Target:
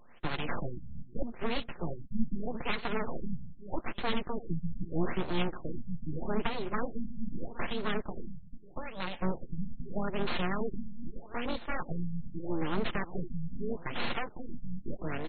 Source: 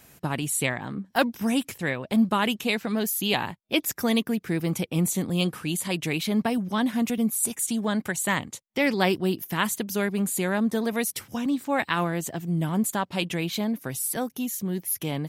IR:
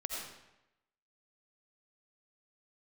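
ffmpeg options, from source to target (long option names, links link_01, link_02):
-filter_complex "[0:a]aeval=exprs='0.398*(cos(1*acos(clip(val(0)/0.398,-1,1)))-cos(1*PI/2))+0.0708*(cos(4*acos(clip(val(0)/0.398,-1,1)))-cos(4*PI/2))':channel_layout=same,asettb=1/sr,asplit=3[link_01][link_02][link_03];[link_01]atrim=end=8.014[link_04];[link_02]atrim=start=8.01:end=9.22,asetpts=PTS-STARTPTS,afade=type=in:duration=0.004:curve=qsin,afade=type=out:start_time=1.206:duration=0.004:curve=qsin,acompressor=threshold=-30dB:ratio=8[link_05];[link_03]atrim=start=9.216[link_06];[link_04][link_05]acrossfade=duration=0.004:curve1=hsin:curve2=qsin[link_07];[link_07][link_06]acrossfade=duration=0.004:curve1=qsin:curve2=hsin,highpass=frequency=120:poles=1,aeval=exprs='clip(val(0),-1,0.0596)':channel_layout=same,tremolo=f=240:d=0.462,aecho=1:1:5.7:0.67,asplit=2[link_08][link_09];[link_09]adelay=357,lowpass=frequency=4400:poles=1,volume=-16dB,asplit=2[link_10][link_11];[link_11]adelay=357,lowpass=frequency=4400:poles=1,volume=0.31,asplit=2[link_12][link_13];[link_13]adelay=357,lowpass=frequency=4400:poles=1,volume=0.31[link_14];[link_10][link_12][link_14]amix=inputs=3:normalize=0[link_15];[link_08][link_15]amix=inputs=2:normalize=0,acrossover=split=200[link_16][link_17];[link_17]acompressor=threshold=-28dB:ratio=6[link_18];[link_16][link_18]amix=inputs=2:normalize=0,equalizer=frequency=290:width=0.3:gain=-6.5,aeval=exprs='abs(val(0))':channel_layout=same,afftfilt=real='re*lt(b*sr/1024,220*pow(4500/220,0.5+0.5*sin(2*PI*0.8*pts/sr)))':imag='im*lt(b*sr/1024,220*pow(4500/220,0.5+0.5*sin(2*PI*0.8*pts/sr)))':win_size=1024:overlap=0.75,volume=5dB"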